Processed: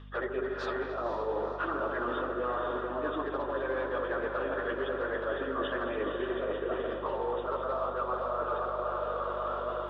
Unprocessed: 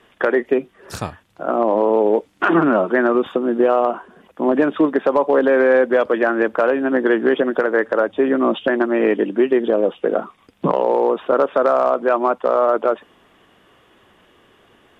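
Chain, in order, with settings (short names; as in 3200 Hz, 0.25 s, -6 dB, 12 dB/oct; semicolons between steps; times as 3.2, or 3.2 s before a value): diffused feedback echo 0.788 s, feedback 48%, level -6 dB; AGC gain up to 5 dB; speaker cabinet 460–4900 Hz, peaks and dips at 740 Hz -4 dB, 1200 Hz +6 dB, 2200 Hz -5 dB, 3600 Hz +8 dB; on a send: repeats that get brighter 0.109 s, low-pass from 750 Hz, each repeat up 1 oct, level -6 dB; on the sum: plain phase-vocoder stretch 0.66×; reverse; compressor 6:1, threshold -29 dBFS, peak gain reduction 15 dB; reverse; hum 50 Hz, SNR 15 dB; gain -1.5 dB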